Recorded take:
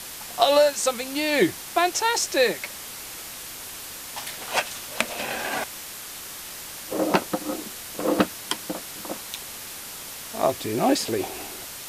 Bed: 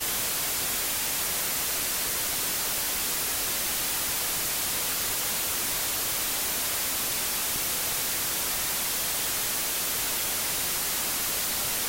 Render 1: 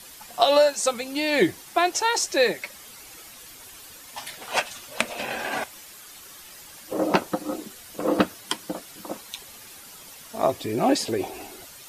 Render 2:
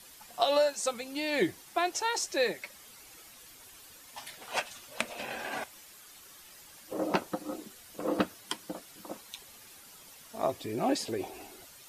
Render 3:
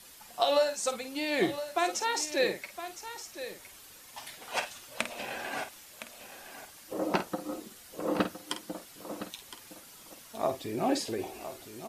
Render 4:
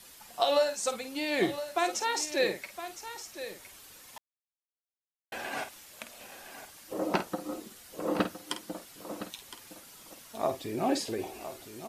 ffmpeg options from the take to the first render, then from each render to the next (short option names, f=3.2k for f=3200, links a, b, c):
-af "afftdn=nr=10:nf=-38"
-af "volume=-8dB"
-filter_complex "[0:a]asplit=2[a][b];[b]adelay=50,volume=-10dB[c];[a][c]amix=inputs=2:normalize=0,aecho=1:1:1013:0.251"
-filter_complex "[0:a]asplit=3[a][b][c];[a]atrim=end=4.18,asetpts=PTS-STARTPTS,afade=t=out:st=4.176:d=0.004:c=hsin[d];[b]atrim=start=4.18:end=5.32,asetpts=PTS-STARTPTS,volume=0[e];[c]atrim=start=5.32,asetpts=PTS-STARTPTS,afade=t=in:d=0.004:c=hsin[f];[d][e][f]concat=n=3:v=0:a=1"